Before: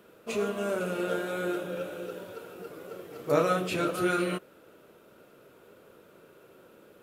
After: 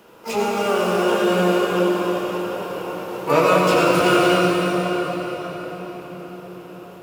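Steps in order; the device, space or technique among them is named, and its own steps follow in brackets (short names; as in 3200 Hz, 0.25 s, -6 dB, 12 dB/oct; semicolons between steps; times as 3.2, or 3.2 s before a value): shimmer-style reverb (harmoniser +12 st -5 dB; reverb RT60 5.5 s, pre-delay 71 ms, DRR -2.5 dB); gain +6 dB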